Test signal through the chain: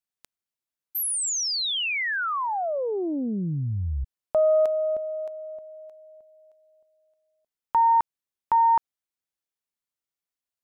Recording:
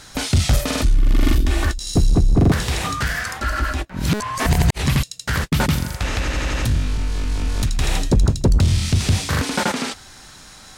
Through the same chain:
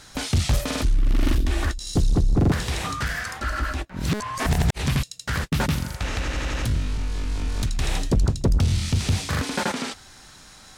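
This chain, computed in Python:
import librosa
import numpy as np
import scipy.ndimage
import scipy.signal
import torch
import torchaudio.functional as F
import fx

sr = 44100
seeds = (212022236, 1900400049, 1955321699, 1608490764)

y = fx.doppler_dist(x, sr, depth_ms=0.36)
y = y * 10.0 ** (-4.5 / 20.0)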